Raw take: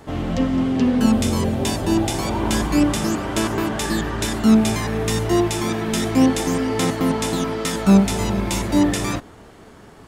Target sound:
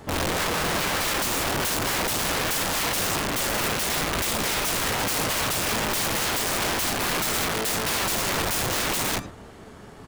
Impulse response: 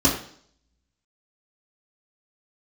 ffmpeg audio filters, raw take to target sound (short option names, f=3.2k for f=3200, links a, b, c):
-filter_complex "[0:a]aecho=1:1:108:0.168,asplit=2[a][b];[1:a]atrim=start_sample=2205,atrim=end_sample=3969[c];[b][c]afir=irnorm=-1:irlink=0,volume=-38dB[d];[a][d]amix=inputs=2:normalize=0,aeval=exprs='(mod(10.6*val(0)+1,2)-1)/10.6':c=same"